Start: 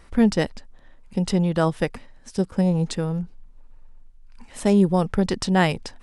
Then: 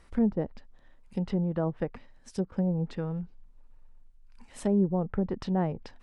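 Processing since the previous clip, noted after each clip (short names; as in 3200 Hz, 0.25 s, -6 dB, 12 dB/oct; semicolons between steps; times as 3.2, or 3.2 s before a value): treble ducked by the level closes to 740 Hz, closed at -16.5 dBFS; gain -7.5 dB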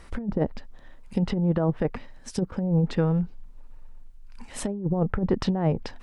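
negative-ratio compressor -29 dBFS, ratio -0.5; gain +7 dB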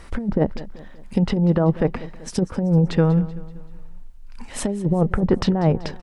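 feedback echo 0.191 s, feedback 47%, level -17.5 dB; gain +5.5 dB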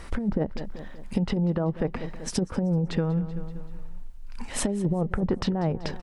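compressor 6:1, threshold -23 dBFS, peak gain reduction 11 dB; gain +1 dB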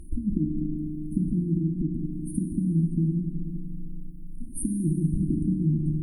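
FDN reverb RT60 2.3 s, low-frequency decay 1.5×, high-frequency decay 0.75×, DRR 4 dB; FFT band-reject 360–8600 Hz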